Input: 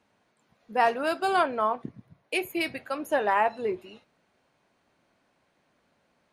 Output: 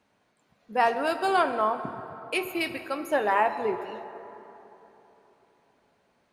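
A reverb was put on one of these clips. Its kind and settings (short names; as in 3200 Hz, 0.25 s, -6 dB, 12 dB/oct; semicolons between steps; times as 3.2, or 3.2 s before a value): plate-style reverb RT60 3.5 s, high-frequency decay 0.5×, DRR 9 dB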